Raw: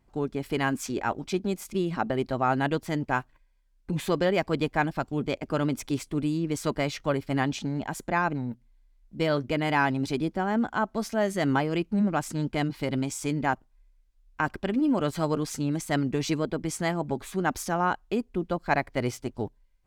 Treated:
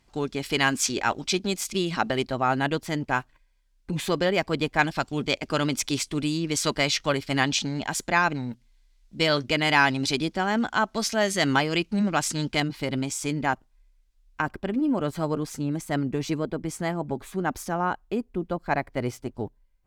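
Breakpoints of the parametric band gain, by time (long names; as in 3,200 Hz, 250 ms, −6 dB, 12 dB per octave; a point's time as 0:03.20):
parametric band 4,800 Hz 2.8 octaves
+14 dB
from 0:02.25 +6 dB
from 0:04.79 +13.5 dB
from 0:12.60 +5 dB
from 0:14.42 −3.5 dB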